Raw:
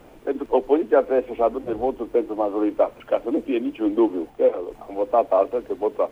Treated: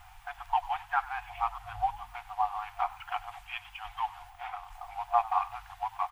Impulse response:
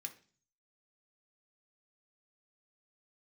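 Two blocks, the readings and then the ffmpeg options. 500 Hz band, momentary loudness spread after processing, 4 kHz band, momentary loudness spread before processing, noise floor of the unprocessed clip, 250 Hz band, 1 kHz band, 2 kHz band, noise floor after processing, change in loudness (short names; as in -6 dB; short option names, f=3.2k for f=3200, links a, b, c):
-25.0 dB, 13 LU, n/a, 7 LU, -47 dBFS, under -40 dB, -1.5 dB, 0.0 dB, -54 dBFS, -11.5 dB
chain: -filter_complex "[0:a]afftfilt=real='re*(1-between(b*sr/4096,110,710))':imag='im*(1-between(b*sr/4096,110,710))':win_size=4096:overlap=0.75,asplit=4[a][b][c][d];[b]adelay=96,afreqshift=59,volume=-19dB[e];[c]adelay=192,afreqshift=118,volume=-28.9dB[f];[d]adelay=288,afreqshift=177,volume=-38.8dB[g];[a][e][f][g]amix=inputs=4:normalize=0"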